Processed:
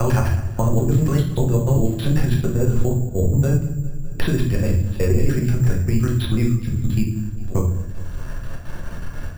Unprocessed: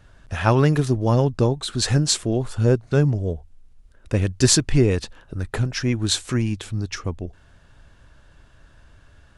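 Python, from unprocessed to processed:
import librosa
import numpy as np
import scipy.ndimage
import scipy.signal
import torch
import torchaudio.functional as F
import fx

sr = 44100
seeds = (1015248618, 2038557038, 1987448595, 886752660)

p1 = fx.block_reorder(x, sr, ms=98.0, group=6)
p2 = fx.low_shelf(p1, sr, hz=120.0, db=9.0)
p3 = fx.hum_notches(p2, sr, base_hz=50, count=8)
p4 = fx.level_steps(p3, sr, step_db=22)
p5 = p4 + fx.echo_feedback(p4, sr, ms=203, feedback_pct=49, wet_db=-22.0, dry=0)
p6 = fx.room_shoebox(p5, sr, seeds[0], volume_m3=71.0, walls='mixed', distance_m=0.9)
p7 = np.repeat(scipy.signal.resample_poly(p6, 1, 6), 6)[:len(p6)]
y = fx.band_squash(p7, sr, depth_pct=70)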